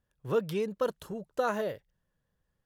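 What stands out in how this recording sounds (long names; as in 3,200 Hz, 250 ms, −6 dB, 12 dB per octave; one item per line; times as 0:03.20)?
background noise floor −81 dBFS
spectral slope −5.0 dB per octave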